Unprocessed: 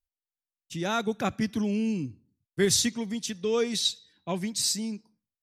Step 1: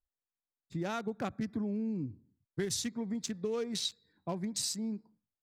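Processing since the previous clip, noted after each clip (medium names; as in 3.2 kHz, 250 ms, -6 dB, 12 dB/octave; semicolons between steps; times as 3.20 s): local Wiener filter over 15 samples; compression, threshold -32 dBFS, peak gain reduction 12.5 dB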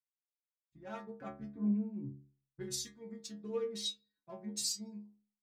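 inharmonic resonator 67 Hz, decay 0.68 s, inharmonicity 0.008; three bands expanded up and down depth 100%; trim +3.5 dB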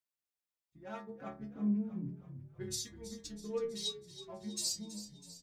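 frequency-shifting echo 325 ms, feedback 59%, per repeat -35 Hz, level -13.5 dB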